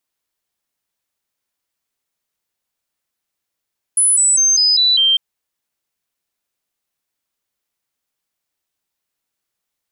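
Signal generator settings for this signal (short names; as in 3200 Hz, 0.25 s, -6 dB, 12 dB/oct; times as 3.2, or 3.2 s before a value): stepped sine 10000 Hz down, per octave 3, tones 6, 0.20 s, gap 0.00 s -10 dBFS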